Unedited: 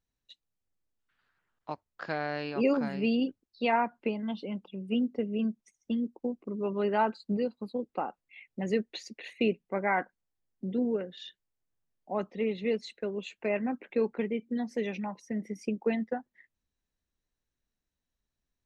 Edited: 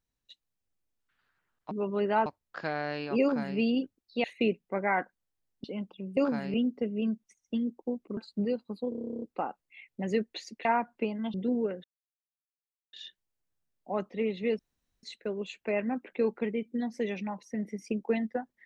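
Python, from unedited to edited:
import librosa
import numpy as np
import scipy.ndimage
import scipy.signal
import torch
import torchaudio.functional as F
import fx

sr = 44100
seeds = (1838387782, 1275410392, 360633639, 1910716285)

y = fx.edit(x, sr, fx.duplicate(start_s=2.66, length_s=0.37, to_s=4.91),
    fx.swap(start_s=3.69, length_s=0.69, other_s=9.24, other_length_s=1.4),
    fx.move(start_s=6.54, length_s=0.55, to_s=1.71),
    fx.stutter(start_s=7.81, slice_s=0.03, count=12),
    fx.insert_silence(at_s=11.14, length_s=1.09),
    fx.insert_room_tone(at_s=12.8, length_s=0.44), tone=tone)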